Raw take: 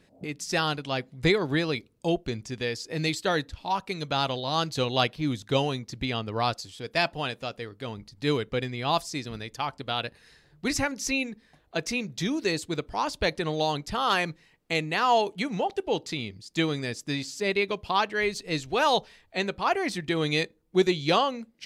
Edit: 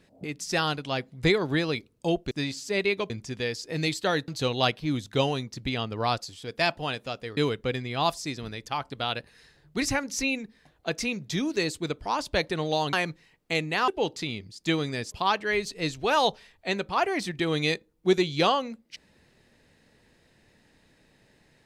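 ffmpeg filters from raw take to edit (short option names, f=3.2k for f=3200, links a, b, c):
-filter_complex "[0:a]asplit=8[a][b][c][d][e][f][g][h];[a]atrim=end=2.312[i];[b]atrim=start=17.018:end=17.812[j];[c]atrim=start=2.308:end=3.492[k];[d]atrim=start=4.638:end=7.732[l];[e]atrim=start=8.248:end=13.812[m];[f]atrim=start=14.128:end=15.082[n];[g]atrim=start=15.778:end=17.022[o];[h]atrim=start=17.808[p];[i][j]acrossfade=d=0.004:c1=hsin:c2=hsin[q];[q][k]acrossfade=d=0.004:c1=hsin:c2=hsin[r];[r][l]acrossfade=d=0.004:c1=hsin:c2=hsin[s];[s][m]acrossfade=d=0.004:c1=hsin:c2=hsin[t];[t][n]acrossfade=d=0.004:c1=hsin:c2=hsin[u];[u][o]acrossfade=d=0.004:c1=hsin:c2=hsin[v];[v][p]acrossfade=d=0.004:c1=hsin:c2=hsin"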